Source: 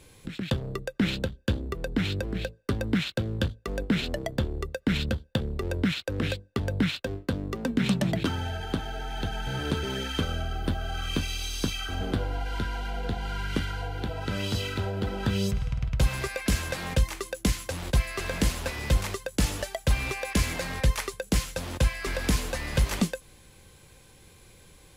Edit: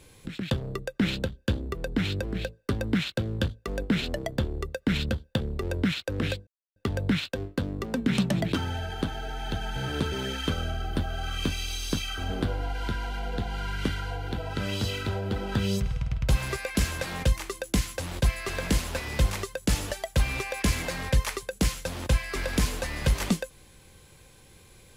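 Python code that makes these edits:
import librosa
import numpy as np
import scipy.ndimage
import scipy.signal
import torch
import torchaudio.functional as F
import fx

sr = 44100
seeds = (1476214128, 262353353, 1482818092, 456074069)

y = fx.edit(x, sr, fx.insert_silence(at_s=6.47, length_s=0.29), tone=tone)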